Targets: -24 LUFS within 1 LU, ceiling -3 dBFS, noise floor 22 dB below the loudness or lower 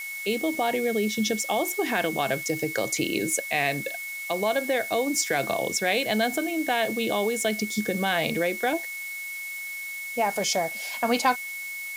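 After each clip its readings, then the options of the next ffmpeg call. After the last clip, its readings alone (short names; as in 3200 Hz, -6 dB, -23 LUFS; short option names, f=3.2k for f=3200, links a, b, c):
steady tone 2200 Hz; tone level -33 dBFS; noise floor -35 dBFS; noise floor target -48 dBFS; loudness -26.0 LUFS; peak -8.0 dBFS; loudness target -24.0 LUFS
-> -af "bandreject=f=2.2k:w=30"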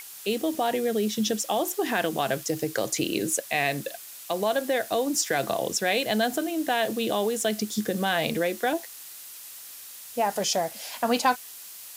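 steady tone none; noise floor -43 dBFS; noise floor target -49 dBFS
-> -af "afftdn=nr=6:nf=-43"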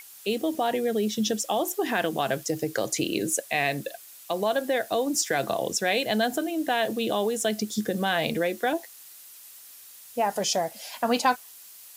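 noise floor -48 dBFS; noise floor target -49 dBFS
-> -af "afftdn=nr=6:nf=-48"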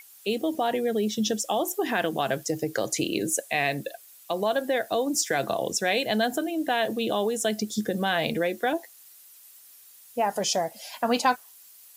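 noise floor -52 dBFS; loudness -27.0 LUFS; peak -9.0 dBFS; loudness target -24.0 LUFS
-> -af "volume=3dB"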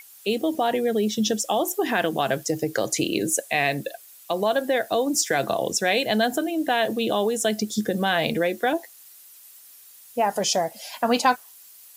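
loudness -24.0 LUFS; peak -6.0 dBFS; noise floor -49 dBFS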